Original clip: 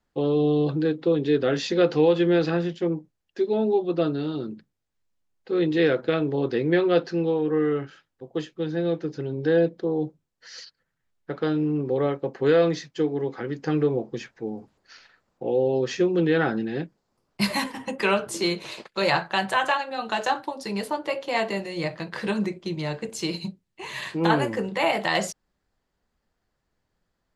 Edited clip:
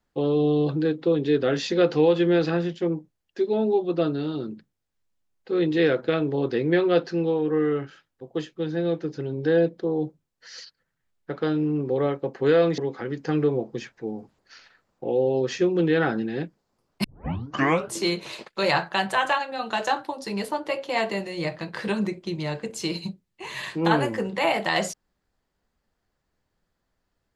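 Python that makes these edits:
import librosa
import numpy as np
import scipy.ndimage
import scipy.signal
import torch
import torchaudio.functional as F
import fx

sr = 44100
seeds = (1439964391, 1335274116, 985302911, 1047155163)

y = fx.edit(x, sr, fx.cut(start_s=12.78, length_s=0.39),
    fx.tape_start(start_s=17.43, length_s=0.84), tone=tone)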